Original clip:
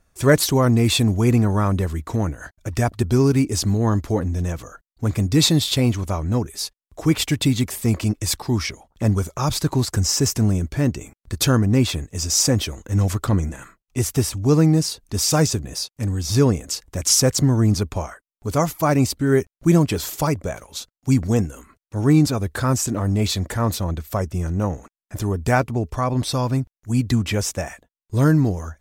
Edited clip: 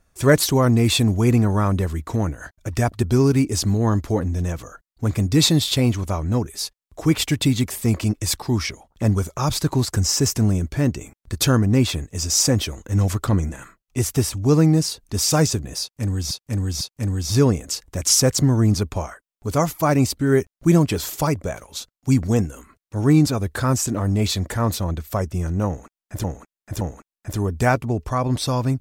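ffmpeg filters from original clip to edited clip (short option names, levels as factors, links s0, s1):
-filter_complex "[0:a]asplit=5[s0][s1][s2][s3][s4];[s0]atrim=end=16.312[s5];[s1]atrim=start=15.808:end=16.312[s6];[s2]atrim=start=15.808:end=25.242[s7];[s3]atrim=start=24.668:end=25.242[s8];[s4]atrim=start=24.668[s9];[s5][s6]acrossfade=d=0.004:c1=hsin:c2=hsin[s10];[s10][s7]acrossfade=d=0.004:c1=hsin:c2=hsin[s11];[s11][s8]acrossfade=d=0.004:c1=hsin:c2=hsin[s12];[s12][s9]acrossfade=d=0.004:c1=hsin:c2=hsin"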